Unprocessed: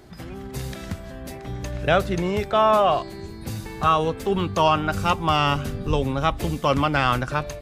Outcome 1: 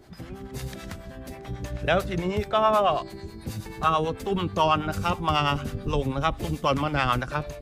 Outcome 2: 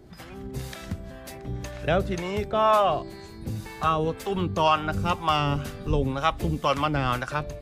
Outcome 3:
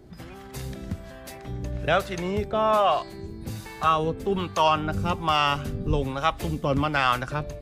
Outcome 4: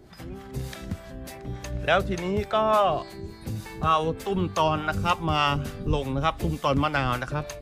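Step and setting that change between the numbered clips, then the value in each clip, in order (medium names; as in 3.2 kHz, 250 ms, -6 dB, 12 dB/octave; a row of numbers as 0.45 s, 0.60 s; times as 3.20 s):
harmonic tremolo, rate: 9.2 Hz, 2 Hz, 1.2 Hz, 3.4 Hz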